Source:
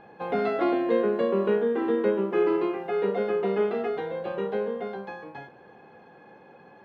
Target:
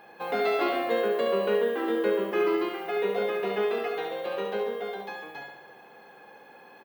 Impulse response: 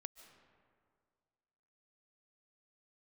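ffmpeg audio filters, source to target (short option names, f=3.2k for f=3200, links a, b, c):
-filter_complex "[0:a]aemphasis=mode=production:type=riaa,asplit=2[a][b];[b]aecho=0:1:70|140|210|280|350|420|490:0.562|0.315|0.176|0.0988|0.0553|0.031|0.0173[c];[a][c]amix=inputs=2:normalize=0"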